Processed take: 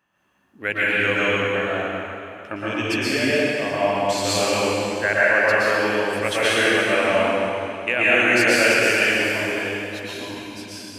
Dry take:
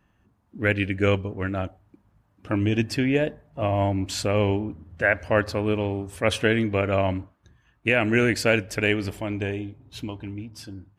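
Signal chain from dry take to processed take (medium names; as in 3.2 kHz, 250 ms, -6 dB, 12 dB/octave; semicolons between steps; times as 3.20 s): high-pass 760 Hz 6 dB/octave; plate-style reverb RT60 2.9 s, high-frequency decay 0.85×, pre-delay 105 ms, DRR -9 dB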